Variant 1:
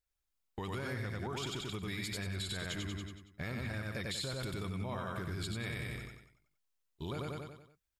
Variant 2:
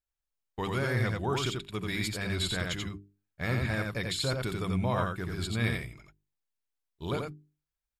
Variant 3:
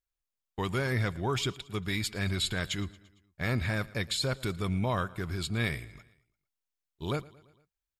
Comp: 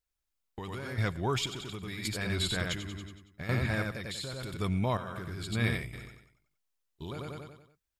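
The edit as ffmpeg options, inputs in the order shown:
-filter_complex "[2:a]asplit=2[a][b];[1:a]asplit=3[c][d][e];[0:a]asplit=6[f][g][h][i][j][k];[f]atrim=end=0.982[l];[a]atrim=start=0.978:end=1.462[m];[g]atrim=start=1.458:end=2.052[n];[c]atrim=start=2.048:end=2.782[o];[h]atrim=start=2.778:end=3.492[p];[d]atrim=start=3.488:end=3.912[q];[i]atrim=start=3.908:end=4.572[r];[b]atrim=start=4.568:end=4.972[s];[j]atrim=start=4.968:end=5.522[t];[e]atrim=start=5.518:end=5.932[u];[k]atrim=start=5.928[v];[l][m]acrossfade=d=0.004:c1=hsin:c2=hsin[w];[w][n]acrossfade=d=0.004:c1=hsin:c2=hsin[x];[x][o]acrossfade=d=0.004:c1=hsin:c2=hsin[y];[y][p]acrossfade=d=0.004:c1=hsin:c2=hsin[z];[z][q]acrossfade=d=0.004:c1=hsin:c2=hsin[aa];[aa][r]acrossfade=d=0.004:c1=hsin:c2=hsin[ab];[ab][s]acrossfade=d=0.004:c1=hsin:c2=hsin[ac];[ac][t]acrossfade=d=0.004:c1=hsin:c2=hsin[ad];[ad][u]acrossfade=d=0.004:c1=hsin:c2=hsin[ae];[ae][v]acrossfade=d=0.004:c1=hsin:c2=hsin"

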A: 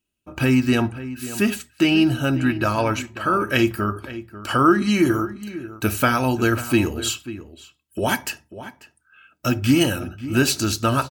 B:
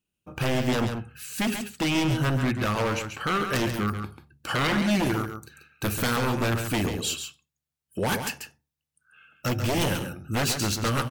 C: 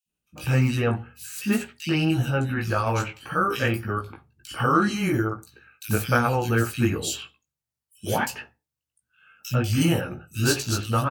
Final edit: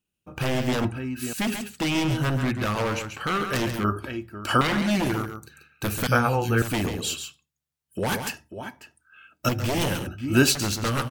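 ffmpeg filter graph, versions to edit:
-filter_complex "[0:a]asplit=4[a][b][c][d];[1:a]asplit=6[e][f][g][h][i][j];[e]atrim=end=0.852[k];[a]atrim=start=0.848:end=1.332[l];[f]atrim=start=1.328:end=3.842[m];[b]atrim=start=3.838:end=4.612[n];[g]atrim=start=4.608:end=6.072[o];[2:a]atrim=start=6.068:end=6.622[p];[h]atrim=start=6.618:end=8.342[q];[c]atrim=start=8.338:end=9.492[r];[i]atrim=start=9.488:end=10.072[s];[d]atrim=start=10.068:end=10.552[t];[j]atrim=start=10.548[u];[k][l]acrossfade=d=0.004:c1=hsin:c2=hsin[v];[v][m]acrossfade=d=0.004:c1=hsin:c2=hsin[w];[w][n]acrossfade=d=0.004:c1=hsin:c2=hsin[x];[x][o]acrossfade=d=0.004:c1=hsin:c2=hsin[y];[y][p]acrossfade=d=0.004:c1=hsin:c2=hsin[z];[z][q]acrossfade=d=0.004:c1=hsin:c2=hsin[aa];[aa][r]acrossfade=d=0.004:c1=hsin:c2=hsin[ab];[ab][s]acrossfade=d=0.004:c1=hsin:c2=hsin[ac];[ac][t]acrossfade=d=0.004:c1=hsin:c2=hsin[ad];[ad][u]acrossfade=d=0.004:c1=hsin:c2=hsin"

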